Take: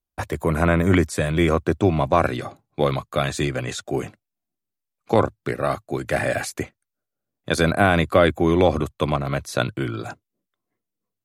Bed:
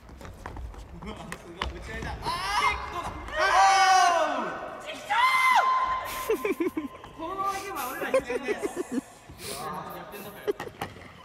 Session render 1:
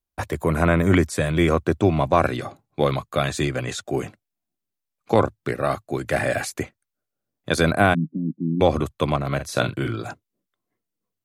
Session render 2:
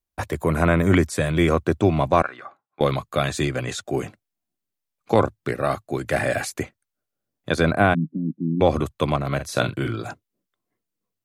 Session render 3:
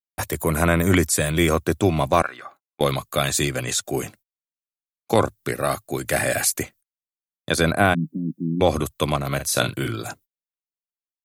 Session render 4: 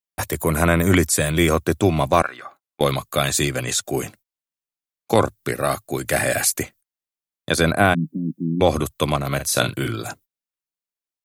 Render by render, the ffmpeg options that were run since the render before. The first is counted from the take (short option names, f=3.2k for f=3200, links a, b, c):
-filter_complex "[0:a]asplit=3[a][b][c];[a]afade=t=out:st=7.93:d=0.02[d];[b]asuperpass=centerf=210:order=8:qfactor=1.5,afade=t=in:st=7.93:d=0.02,afade=t=out:st=8.6:d=0.02[e];[c]afade=t=in:st=8.6:d=0.02[f];[d][e][f]amix=inputs=3:normalize=0,asettb=1/sr,asplit=3[g][h][i];[g]atrim=end=9.354[j];[h]atrim=start=9.35:end=9.95,asetpts=PTS-STARTPTS,afade=t=in:d=0.004:c=qsin,afade=t=out:st=0.596:d=0.004:c=qsin,asplit=2[k][l];[l]adelay=43,volume=-8dB[m];[k][m]amix=inputs=2:normalize=0,atrim=end_sample=26460[n];[i]atrim=start=9.946[o];[j][n]acrossfade=d=0.004:c1=hsin:c2=qsin[p];[p][o]acrossfade=d=0.004:c1=qsin:c2=hsin"
-filter_complex "[0:a]asettb=1/sr,asplit=3[a][b][c];[a]atrim=end=2.224[d];[b]atrim=start=2.22:end=2.81,asetpts=PTS-STARTPTS,afade=t=in:d=0.004:c=qsin,afade=t=out:st=0.586:d=0.004:c=qsin,bandpass=f=1.3k:t=q:w=2.1[e];[c]atrim=start=2.806[f];[d][e]acrossfade=d=0.004:c1=hsin:c2=qsin[g];[g][f]acrossfade=d=0.004:c1=qsin:c2=hsin,asettb=1/sr,asplit=3[h][i][j];[h]atrim=end=7.514[k];[i]atrim=start=7.51:end=8.67,asetpts=PTS-STARTPTS,afade=t=in:d=0.004:c=qsin,afade=t=out:st=1.156:d=0.004:c=qsin,highshelf=f=4.9k:g=-10.5[l];[j]atrim=start=8.666[m];[k][l]acrossfade=d=0.004:c1=hsin:c2=qsin[n];[n][m]acrossfade=d=0.004:c1=qsin:c2=hsin"
-af "aemphasis=mode=production:type=75fm,agate=range=-33dB:threshold=-47dB:ratio=16:detection=peak"
-af "volume=1.5dB"